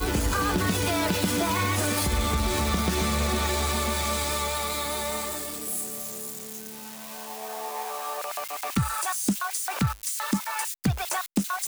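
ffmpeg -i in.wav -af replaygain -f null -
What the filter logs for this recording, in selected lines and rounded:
track_gain = +9.7 dB
track_peak = 0.145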